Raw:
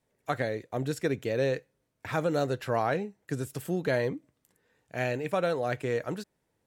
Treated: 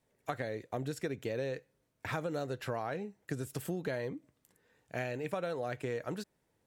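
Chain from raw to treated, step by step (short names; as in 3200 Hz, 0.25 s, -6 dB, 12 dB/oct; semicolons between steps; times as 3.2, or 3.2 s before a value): compressor, threshold -33 dBFS, peak gain reduction 10 dB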